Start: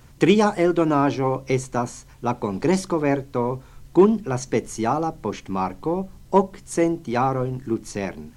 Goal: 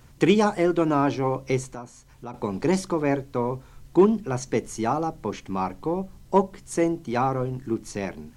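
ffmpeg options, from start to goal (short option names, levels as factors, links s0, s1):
-filter_complex "[0:a]asettb=1/sr,asplit=3[s0][s1][s2];[s0]atrim=end=1.704[s3];[s1]atrim=start=1.7:end=2.34,asetpts=PTS-STARTPTS,afade=t=in:d=0.004:c=qsin,afade=t=out:st=0.636:d=0.004:c=qsin,acompressor=threshold=0.00891:ratio=2[s4];[s2]atrim=start=2.336[s5];[s3][s4]acrossfade=d=0.004:c1=hsin:c2=qsin[s6];[s6][s5]acrossfade=d=0.004:c1=qsin:c2=hsin,volume=0.75"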